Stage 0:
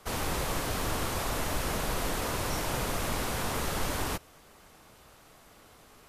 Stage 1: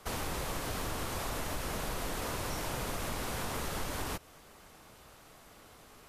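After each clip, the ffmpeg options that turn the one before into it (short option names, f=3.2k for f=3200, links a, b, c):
-af "acompressor=threshold=-34dB:ratio=3"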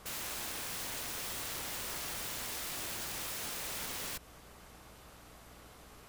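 -af "aeval=exprs='(mod(59.6*val(0)+1,2)-1)/59.6':c=same,aeval=exprs='val(0)+0.001*(sin(2*PI*60*n/s)+sin(2*PI*2*60*n/s)/2+sin(2*PI*3*60*n/s)/3+sin(2*PI*4*60*n/s)/4+sin(2*PI*5*60*n/s)/5)':c=same"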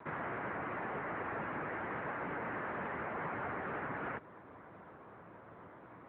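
-af "acrusher=samples=6:mix=1:aa=0.000001,highpass=f=170:t=q:w=0.5412,highpass=f=170:t=q:w=1.307,lowpass=f=2k:t=q:w=0.5176,lowpass=f=2k:t=q:w=0.7071,lowpass=f=2k:t=q:w=1.932,afreqshift=-130,volume=5dB" -ar 8000 -c:a libopencore_amrnb -b:a 10200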